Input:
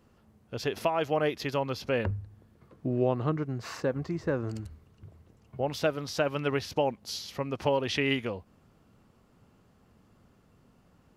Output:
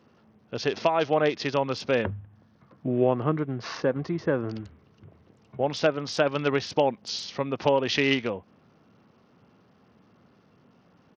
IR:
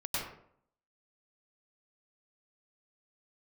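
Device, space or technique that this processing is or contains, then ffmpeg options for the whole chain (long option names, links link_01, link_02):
Bluetooth headset: -filter_complex "[0:a]asettb=1/sr,asplit=3[link_01][link_02][link_03];[link_01]atrim=end=2.104[link_04];[link_02]atrim=start=2.1:end=2.88,asetpts=PTS-STARTPTS,afade=type=in:duration=0.004:curve=qsin,afade=type=out:start_time=0.776:duration=0.004:curve=qsin,equalizer=frequency=400:width_type=o:width=0.67:gain=-10,equalizer=frequency=2500:width_type=o:width=0.67:gain=-4,equalizer=frequency=10000:width_type=o:width=0.67:gain=5[link_05];[link_03]atrim=start=2.876[link_06];[link_04][link_05]acrossfade=duration=0.004:curve1=hsin:curve2=qsin[link_07];[link_07][link_06]acrossfade=duration=0.004:curve1=qsin:curve2=hsin,highpass=140,aresample=16000,aresample=44100,volume=4.5dB" -ar 48000 -c:a sbc -b:a 64k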